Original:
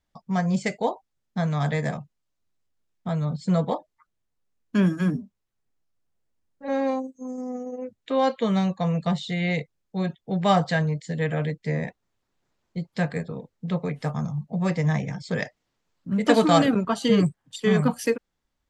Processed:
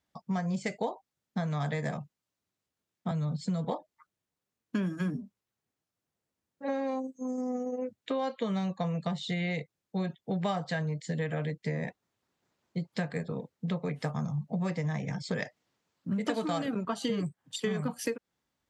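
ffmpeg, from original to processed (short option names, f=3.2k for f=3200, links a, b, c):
-filter_complex "[0:a]asettb=1/sr,asplit=3[a][b][c];[a]atrim=end=3.114[d];[b]atrim=start=3.11:end=3.65,asetpts=PTS-STARTPTS,afade=t=in:d=0.004:c=qsin,afade=t=out:st=0.536:d=0.004:c=qsin,acrossover=split=230|3000[e][f][g];[f]acompressor=threshold=-43dB:ratio=1.5:attack=3.2:release=140:knee=2.83:detection=peak[h];[e][h][g]amix=inputs=3:normalize=0[i];[c]atrim=start=3.646[j];[d][i]acrossfade=d=0.004:c1=hsin:c2=qsin[k];[k][j]acrossfade=d=0.004:c1=qsin:c2=hsin,highpass=100,acompressor=threshold=-28dB:ratio=10"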